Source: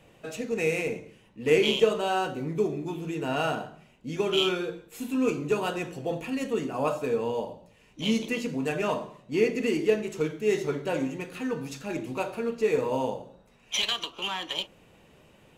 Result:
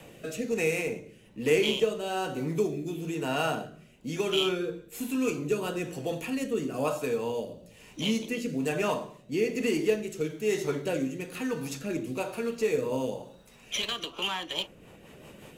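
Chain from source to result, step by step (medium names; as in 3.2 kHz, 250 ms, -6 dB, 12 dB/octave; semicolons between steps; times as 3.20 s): rotary cabinet horn 1.1 Hz, later 5.5 Hz, at 14.11 s; short-mantissa float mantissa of 8-bit; treble shelf 7.7 kHz +10.5 dB; three bands compressed up and down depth 40%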